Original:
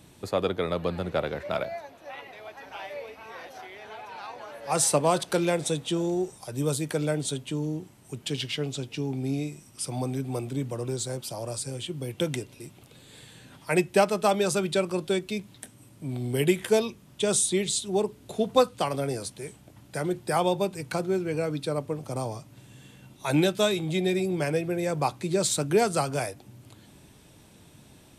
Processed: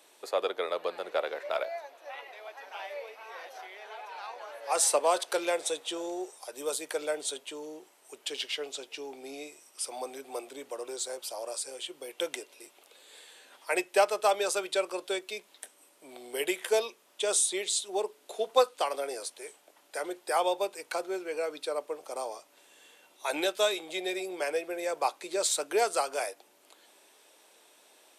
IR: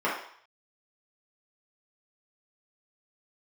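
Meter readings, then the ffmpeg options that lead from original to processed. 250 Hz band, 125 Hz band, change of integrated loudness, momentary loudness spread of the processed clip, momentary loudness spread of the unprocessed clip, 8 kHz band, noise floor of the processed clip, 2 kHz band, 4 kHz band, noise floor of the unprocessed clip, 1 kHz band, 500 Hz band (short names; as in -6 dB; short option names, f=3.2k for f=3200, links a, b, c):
-13.5 dB, under -35 dB, -4.0 dB, 18 LU, 18 LU, -1.5 dB, -63 dBFS, -1.5 dB, -1.5 dB, -54 dBFS, -1.5 dB, -3.5 dB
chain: -af "highpass=f=440:w=0.5412,highpass=f=440:w=1.3066,volume=-1.5dB"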